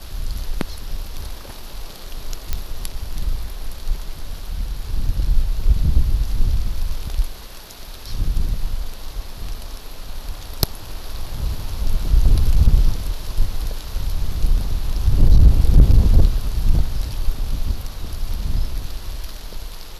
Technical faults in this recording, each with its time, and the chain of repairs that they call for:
0:02.53: click −7 dBFS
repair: click removal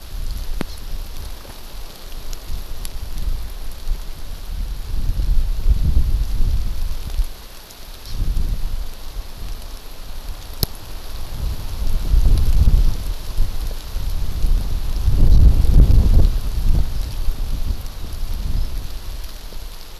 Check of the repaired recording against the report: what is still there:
none of them is left

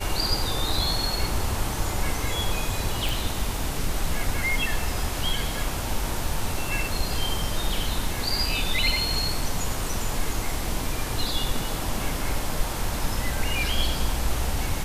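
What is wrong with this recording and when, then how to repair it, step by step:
0:03.09: click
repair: click removal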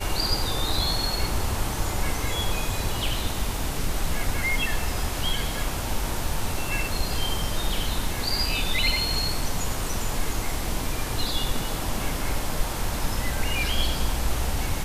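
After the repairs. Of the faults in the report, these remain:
none of them is left

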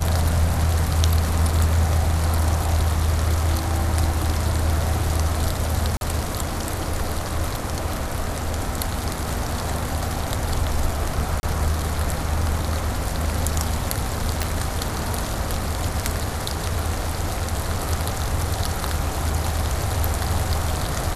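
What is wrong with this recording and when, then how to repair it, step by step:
0:05.97–0:06.01: drop-out 41 ms
0:11.40–0:11.43: drop-out 30 ms
0:14.43: click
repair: click removal
repair the gap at 0:05.97, 41 ms
repair the gap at 0:11.40, 30 ms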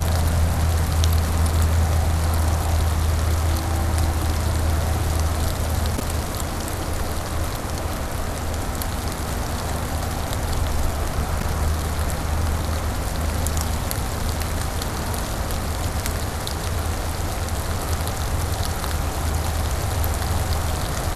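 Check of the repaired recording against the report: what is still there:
0:14.43: click

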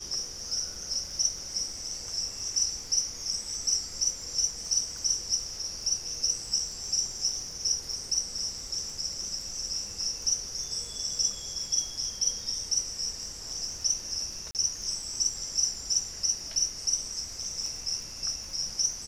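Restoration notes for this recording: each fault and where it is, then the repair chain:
surface crackle 41 per second −39 dBFS
0:14.51–0:14.55: drop-out 38 ms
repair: click removal
repair the gap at 0:14.51, 38 ms

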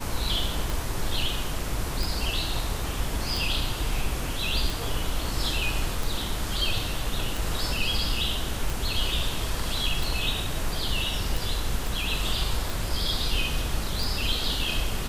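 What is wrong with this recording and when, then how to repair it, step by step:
scratch tick 45 rpm
0:11.87: click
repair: click removal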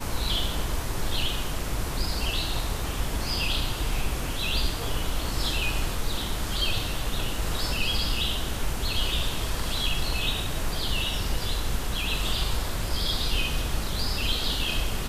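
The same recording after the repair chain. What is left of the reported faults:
none of them is left

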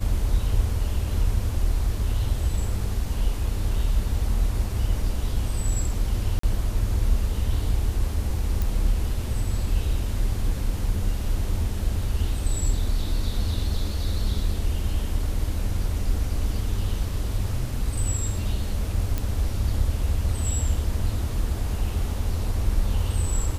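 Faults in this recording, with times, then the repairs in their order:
0:06.39–0:06.43: drop-out 44 ms
0:08.62: click
0:19.18: click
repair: click removal
repair the gap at 0:06.39, 44 ms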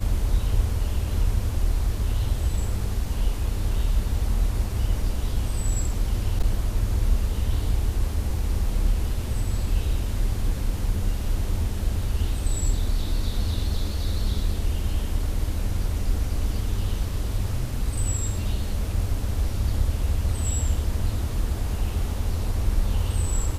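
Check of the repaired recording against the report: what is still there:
none of them is left

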